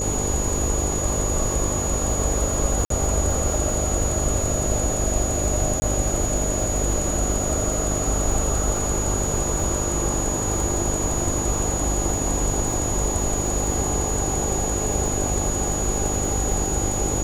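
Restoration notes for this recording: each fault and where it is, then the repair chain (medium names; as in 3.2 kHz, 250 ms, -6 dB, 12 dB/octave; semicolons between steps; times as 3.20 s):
buzz 50 Hz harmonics 12 -28 dBFS
crackle 30 per s -27 dBFS
whine 6.8 kHz -26 dBFS
2.85–2.90 s: dropout 53 ms
5.80–5.82 s: dropout 20 ms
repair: de-click; de-hum 50 Hz, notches 12; band-stop 6.8 kHz, Q 30; interpolate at 2.85 s, 53 ms; interpolate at 5.80 s, 20 ms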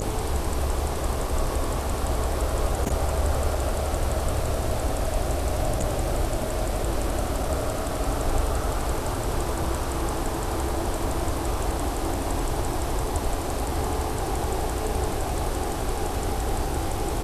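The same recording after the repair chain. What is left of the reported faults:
nothing left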